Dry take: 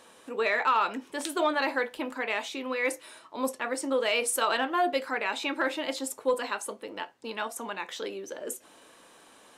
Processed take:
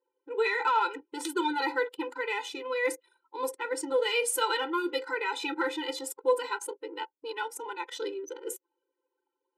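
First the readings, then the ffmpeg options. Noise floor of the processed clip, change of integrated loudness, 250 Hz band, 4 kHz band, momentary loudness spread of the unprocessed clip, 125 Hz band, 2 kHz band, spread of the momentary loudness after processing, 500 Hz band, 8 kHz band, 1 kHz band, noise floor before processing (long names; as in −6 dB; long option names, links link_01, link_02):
below −85 dBFS, −1.0 dB, −2.0 dB, −0.5 dB, 12 LU, can't be measured, −2.0 dB, 12 LU, −0.5 dB, −1.5 dB, −1.5 dB, −56 dBFS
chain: -af "anlmdn=0.158,afftfilt=real='re*eq(mod(floor(b*sr/1024/260),2),1)':imag='im*eq(mod(floor(b*sr/1024/260),2),1)':win_size=1024:overlap=0.75,volume=2dB"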